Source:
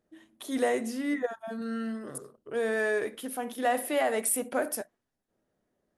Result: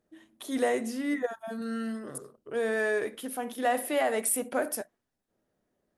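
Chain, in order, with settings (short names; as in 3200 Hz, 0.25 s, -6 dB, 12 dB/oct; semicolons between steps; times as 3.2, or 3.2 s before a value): 1.1–1.99 high shelf 11000 Hz -> 5800 Hz +9.5 dB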